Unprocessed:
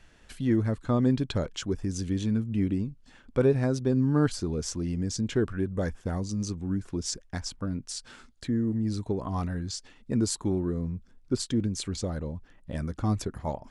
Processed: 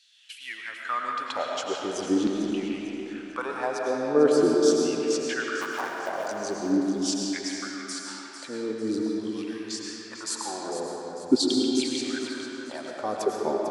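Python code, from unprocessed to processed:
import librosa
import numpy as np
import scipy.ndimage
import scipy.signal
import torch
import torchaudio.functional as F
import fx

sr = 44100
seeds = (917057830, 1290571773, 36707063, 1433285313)

p1 = fx.cycle_switch(x, sr, every=2, mode='muted', at=(5.6, 6.29), fade=0.02)
p2 = fx.filter_lfo_highpass(p1, sr, shape='saw_down', hz=0.44, low_hz=280.0, high_hz=4100.0, q=4.3)
p3 = p2 + fx.echo_feedback(p2, sr, ms=448, feedback_pct=42, wet_db=-10.5, dry=0)
y = fx.rev_freeverb(p3, sr, rt60_s=3.2, hf_ratio=0.6, predelay_ms=65, drr_db=-1.0)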